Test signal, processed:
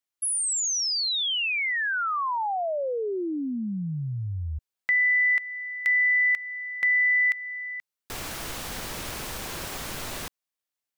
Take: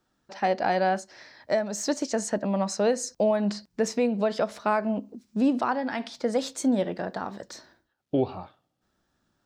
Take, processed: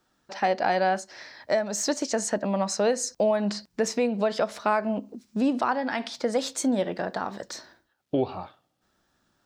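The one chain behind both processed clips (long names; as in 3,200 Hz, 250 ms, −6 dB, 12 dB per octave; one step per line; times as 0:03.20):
low-shelf EQ 410 Hz −5 dB
in parallel at −2 dB: downward compressor, threshold −32 dBFS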